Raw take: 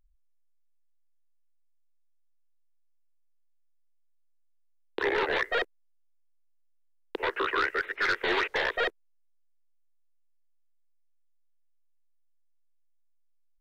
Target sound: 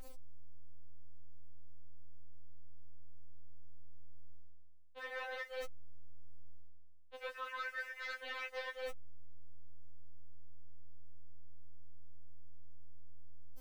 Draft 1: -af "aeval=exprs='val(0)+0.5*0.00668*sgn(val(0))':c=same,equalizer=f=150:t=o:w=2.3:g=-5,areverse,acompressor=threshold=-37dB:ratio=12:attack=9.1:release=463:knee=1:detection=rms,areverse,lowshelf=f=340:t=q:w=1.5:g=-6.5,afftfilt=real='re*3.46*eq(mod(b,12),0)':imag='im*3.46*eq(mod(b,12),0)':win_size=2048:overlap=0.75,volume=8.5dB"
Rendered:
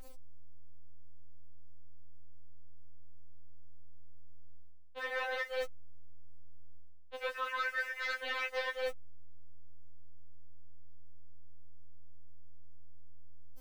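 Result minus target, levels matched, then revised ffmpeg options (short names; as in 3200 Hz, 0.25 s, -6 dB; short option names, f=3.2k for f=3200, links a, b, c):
compressor: peak gain reduction -7 dB
-af "aeval=exprs='val(0)+0.5*0.00668*sgn(val(0))':c=same,equalizer=f=150:t=o:w=2.3:g=-5,areverse,acompressor=threshold=-44.5dB:ratio=12:attack=9.1:release=463:knee=1:detection=rms,areverse,lowshelf=f=340:t=q:w=1.5:g=-6.5,afftfilt=real='re*3.46*eq(mod(b,12),0)':imag='im*3.46*eq(mod(b,12),0)':win_size=2048:overlap=0.75,volume=8.5dB"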